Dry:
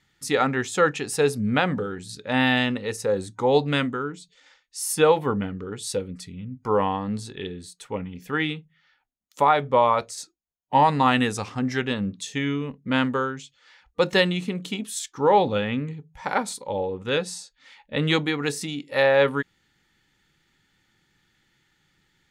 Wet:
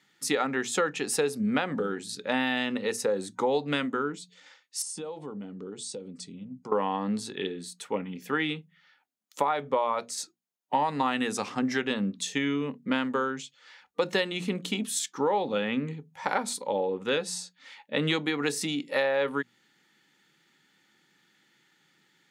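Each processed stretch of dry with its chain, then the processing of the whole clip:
4.82–6.72 elliptic low-pass 8800 Hz, stop band 60 dB + compressor 8:1, threshold -34 dBFS + bell 1800 Hz -11 dB 1.6 oct
whole clip: HPF 170 Hz 24 dB/oct; notches 60/120/180/240 Hz; compressor 5:1, threshold -25 dBFS; gain +1.5 dB

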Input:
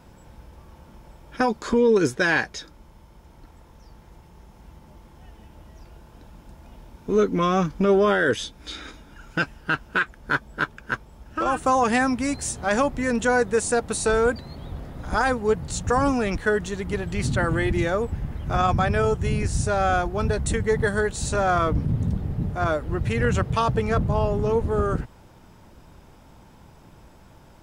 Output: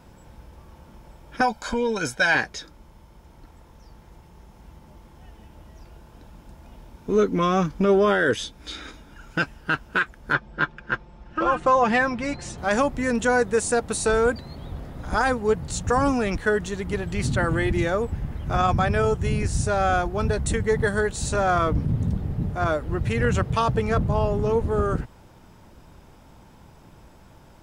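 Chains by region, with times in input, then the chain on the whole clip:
1.41–2.35 bell 130 Hz -9 dB 2.5 oct + notch 1700 Hz, Q 28 + comb 1.3 ms, depth 76%
10.33–12.58 LPF 4000 Hz + comb 5.7 ms, depth 59%
whole clip: dry

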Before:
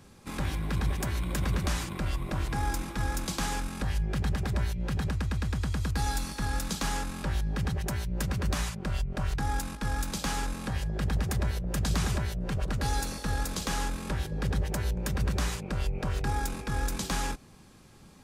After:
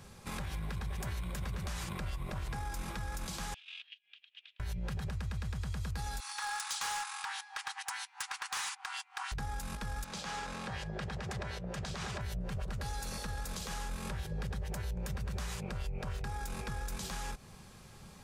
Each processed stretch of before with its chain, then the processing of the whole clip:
3.54–4.6 negative-ratio compressor -34 dBFS, ratio -0.5 + Butterworth band-pass 3000 Hz, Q 3.1
6.2–9.32 brick-wall FIR band-pass 750–11000 Hz + hard clip -33 dBFS
10.04–12.21 HPF 280 Hz 6 dB/oct + air absorption 73 m
whole clip: bell 290 Hz -12 dB 0.46 oct; compressor, threshold -35 dBFS; limiter -32 dBFS; gain +2 dB

